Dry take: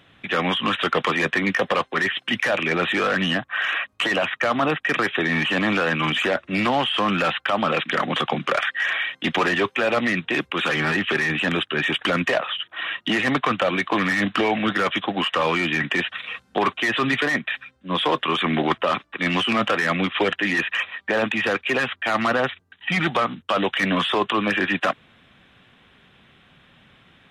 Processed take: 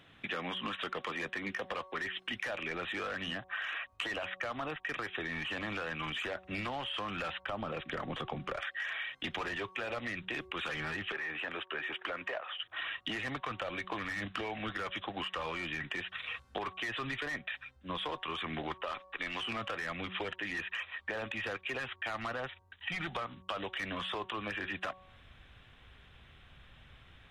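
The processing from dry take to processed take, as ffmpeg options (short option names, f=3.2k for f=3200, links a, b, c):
-filter_complex "[0:a]asettb=1/sr,asplit=3[a][b][c];[a]atrim=end=7.434[d];[b]atrim=start=7.43:end=8.61,asetpts=PTS-STARTPTS,afade=t=in:d=0.004:c=qsin,afade=t=out:st=1.176:d=0.004:c=qsin,tiltshelf=f=740:g=5.5[e];[c]atrim=start=8.606[f];[d][e]acrossfade=d=0.004:c1=hsin:c2=qsin[g];[g][f]acrossfade=d=0.004:c1=qsin:c2=hsin,asettb=1/sr,asplit=3[h][i][j];[h]atrim=end=11.124[k];[i]atrim=start=11.12:end=12.6,asetpts=PTS-STARTPTS,afade=t=in:d=0.004:c=qsin,afade=t=out:st=1.476:d=0.004:c=qsin,acrossover=split=320 2900:gain=0.158 1 0.2[l][m][n];[l][m][n]amix=inputs=3:normalize=0[o];[j]atrim=start=12.596[p];[k][o]acrossfade=d=0.004:c1=hsin:c2=qsin[q];[q][p]acrossfade=d=0.004:c1=qsin:c2=hsin,asettb=1/sr,asplit=3[r][s][t];[r]atrim=end=18.814[u];[s]atrim=start=18.81:end=19.43,asetpts=PTS-STARTPTS,afade=t=in:d=0.004:c=qsin,afade=t=out:st=0.616:d=0.004:c=qsin,equalizer=f=120:t=o:w=1.9:g=-11.5[v];[t]atrim=start=19.426[w];[u][v]acrossfade=d=0.004:c1=hsin:c2=qsin[x];[x][w]acrossfade=d=0.004:c1=qsin:c2=hsin,bandreject=f=186.5:t=h:w=4,bandreject=f=373:t=h:w=4,bandreject=f=559.5:t=h:w=4,bandreject=f=746:t=h:w=4,bandreject=f=932.5:t=h:w=4,bandreject=f=1.119k:t=h:w=4,asubboost=boost=10.5:cutoff=61,acompressor=threshold=-30dB:ratio=6,volume=-5.5dB"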